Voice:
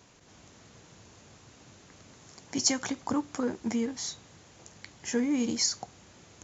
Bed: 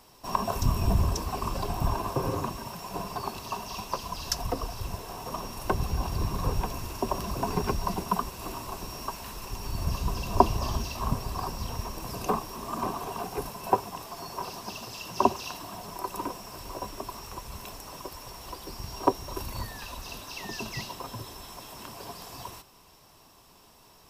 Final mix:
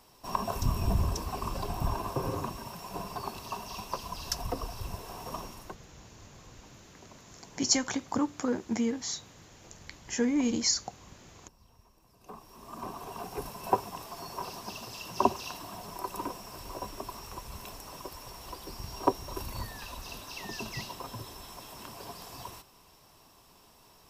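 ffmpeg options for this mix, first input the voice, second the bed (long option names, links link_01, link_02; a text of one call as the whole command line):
ffmpeg -i stem1.wav -i stem2.wav -filter_complex "[0:a]adelay=5050,volume=0.5dB[link_01];[1:a]volume=21dB,afade=type=out:start_time=5.36:duration=0.41:silence=0.0668344,afade=type=in:start_time=12.19:duration=1.48:silence=0.0595662[link_02];[link_01][link_02]amix=inputs=2:normalize=0" out.wav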